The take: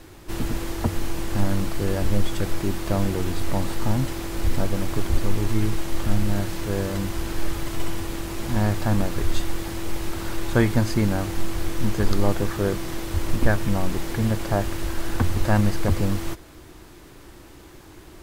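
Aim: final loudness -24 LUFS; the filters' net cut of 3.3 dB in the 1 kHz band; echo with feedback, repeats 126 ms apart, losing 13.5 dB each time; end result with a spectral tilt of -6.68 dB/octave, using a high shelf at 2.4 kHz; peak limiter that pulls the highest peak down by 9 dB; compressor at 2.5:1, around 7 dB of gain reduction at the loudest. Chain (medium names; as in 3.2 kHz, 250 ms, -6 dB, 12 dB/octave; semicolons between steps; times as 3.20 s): peaking EQ 1 kHz -3.5 dB; treble shelf 2.4 kHz -5.5 dB; compression 2.5:1, threshold -22 dBFS; peak limiter -20.5 dBFS; feedback delay 126 ms, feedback 21%, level -13.5 dB; trim +9 dB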